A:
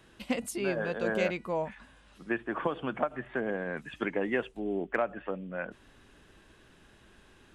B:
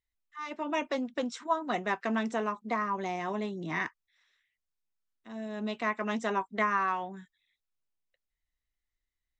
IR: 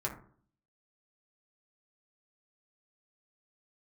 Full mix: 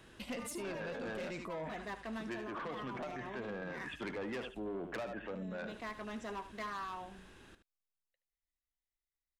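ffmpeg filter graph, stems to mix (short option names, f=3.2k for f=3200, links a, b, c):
-filter_complex "[0:a]asoftclip=type=tanh:threshold=-31.5dB,volume=0.5dB,asplit=2[a][b];[b]volume=-11.5dB[c];[1:a]volume=26.5dB,asoftclip=hard,volume=-26.5dB,volume=-10.5dB,asplit=2[d][e];[e]volume=-13dB[f];[c][f]amix=inputs=2:normalize=0,aecho=0:1:75:1[g];[a][d][g]amix=inputs=3:normalize=0,alimiter=level_in=11.5dB:limit=-24dB:level=0:latency=1:release=25,volume=-11.5dB"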